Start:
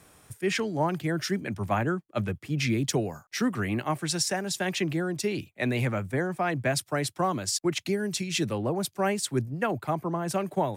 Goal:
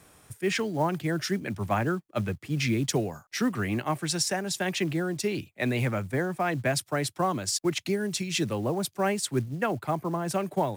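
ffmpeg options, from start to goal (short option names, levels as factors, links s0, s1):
-af "acrusher=bits=7:mode=log:mix=0:aa=0.000001"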